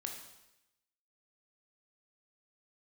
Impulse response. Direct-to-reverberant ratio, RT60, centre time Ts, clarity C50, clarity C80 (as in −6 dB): 2.0 dB, 0.90 s, 33 ms, 5.0 dB, 7.5 dB